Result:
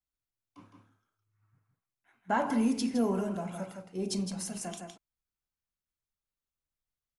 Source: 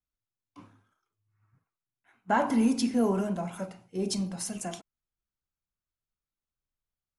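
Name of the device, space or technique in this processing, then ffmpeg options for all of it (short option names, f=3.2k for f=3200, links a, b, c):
ducked delay: -filter_complex "[0:a]asplit=3[a][b][c];[b]adelay=162,volume=-5dB[d];[c]apad=whole_len=323919[e];[d][e]sidechaincompress=threshold=-27dB:ratio=8:attack=16:release=1000[f];[a][f]amix=inputs=2:normalize=0,volume=-3.5dB"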